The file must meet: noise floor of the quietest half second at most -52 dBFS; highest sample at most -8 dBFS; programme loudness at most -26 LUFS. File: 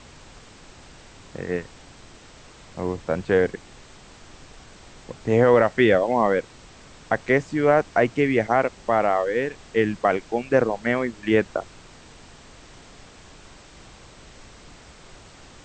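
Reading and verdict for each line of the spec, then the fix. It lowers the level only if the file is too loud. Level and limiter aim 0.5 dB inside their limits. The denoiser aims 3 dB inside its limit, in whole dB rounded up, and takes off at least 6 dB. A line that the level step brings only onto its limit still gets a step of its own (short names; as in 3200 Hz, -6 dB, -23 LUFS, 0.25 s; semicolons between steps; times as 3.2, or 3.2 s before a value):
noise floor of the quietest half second -47 dBFS: fail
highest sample -5.5 dBFS: fail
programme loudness -22.0 LUFS: fail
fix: denoiser 6 dB, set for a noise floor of -47 dBFS; gain -4.5 dB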